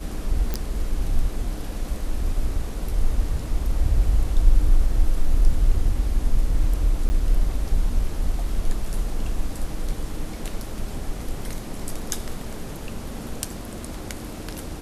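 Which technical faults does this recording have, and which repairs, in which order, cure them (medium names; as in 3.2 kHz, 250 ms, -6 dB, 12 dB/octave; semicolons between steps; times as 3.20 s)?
0.54 s: pop -11 dBFS
7.09–7.10 s: dropout 10 ms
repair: de-click; interpolate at 7.09 s, 10 ms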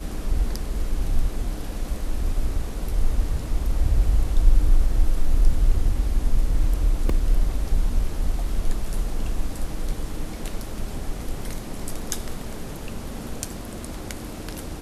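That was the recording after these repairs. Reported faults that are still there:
nothing left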